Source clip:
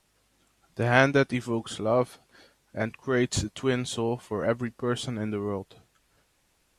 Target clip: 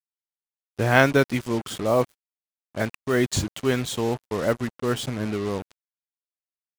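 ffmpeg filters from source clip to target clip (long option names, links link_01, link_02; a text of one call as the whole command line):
ffmpeg -i in.wav -af "acrusher=bits=5:mix=0:aa=0.5,volume=3dB" out.wav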